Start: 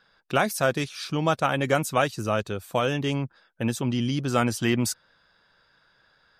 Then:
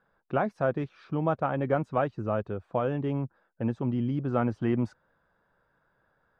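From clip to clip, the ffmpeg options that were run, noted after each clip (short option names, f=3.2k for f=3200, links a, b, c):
-af "lowpass=1.1k,volume=-2.5dB"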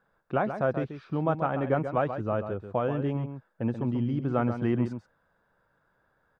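-filter_complex "[0:a]asplit=2[a][b];[b]adelay=134.1,volume=-9dB,highshelf=f=4k:g=-3.02[c];[a][c]amix=inputs=2:normalize=0"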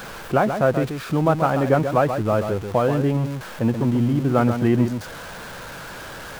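-af "aeval=exprs='val(0)+0.5*0.0133*sgn(val(0))':c=same,volume=7.5dB"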